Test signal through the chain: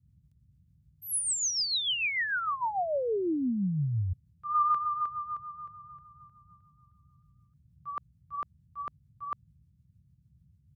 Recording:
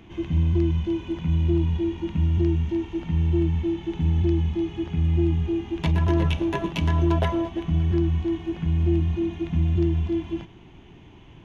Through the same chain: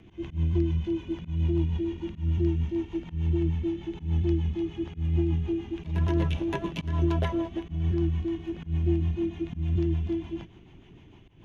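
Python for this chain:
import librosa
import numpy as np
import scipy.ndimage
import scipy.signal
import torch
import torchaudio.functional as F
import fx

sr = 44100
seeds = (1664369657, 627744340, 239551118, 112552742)

y = fx.rotary(x, sr, hz=6.7)
y = fx.auto_swell(y, sr, attack_ms=138.0)
y = fx.dmg_noise_band(y, sr, seeds[0], low_hz=54.0, high_hz=160.0, level_db=-60.0)
y = y * 10.0 ** (-2.5 / 20.0)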